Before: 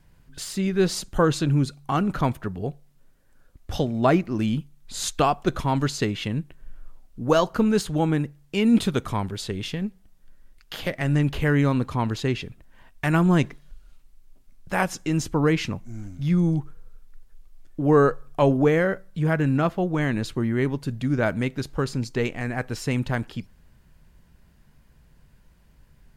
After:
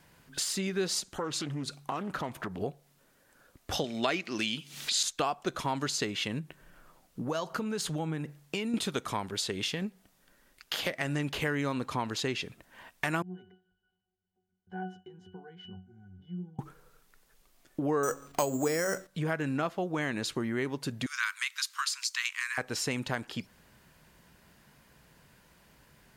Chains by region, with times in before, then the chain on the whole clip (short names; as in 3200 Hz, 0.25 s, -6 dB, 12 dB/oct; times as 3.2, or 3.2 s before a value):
1–2.61 compressor 2.5:1, threshold -34 dBFS + Doppler distortion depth 0.33 ms
3.84–5.03 weighting filter D + upward compressor, threshold -26 dBFS
6.39–8.74 compressor 2.5:1, threshold -30 dBFS + bell 160 Hz +7.5 dB 0.23 oct
13.22–16.59 compressor 3:1, threshold -27 dBFS + octave resonator F#, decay 0.3 s
18.03–19.07 transient shaper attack +5 dB, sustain +11 dB + de-hum 91.6 Hz, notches 4 + careless resampling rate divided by 6×, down none, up hold
21.06–22.58 steep high-pass 1000 Hz 96 dB/oct + high shelf 2200 Hz +9 dB + Doppler distortion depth 0.1 ms
whole clip: HPF 410 Hz 6 dB/oct; dynamic EQ 6300 Hz, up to +4 dB, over -47 dBFS, Q 0.71; compressor 3:1, threshold -38 dBFS; gain +6 dB